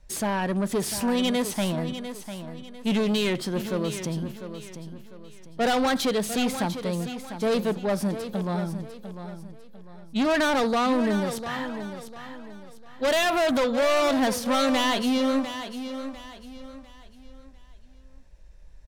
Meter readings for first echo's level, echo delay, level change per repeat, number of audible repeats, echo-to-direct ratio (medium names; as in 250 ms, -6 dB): -10.5 dB, 699 ms, -9.0 dB, 3, -10.0 dB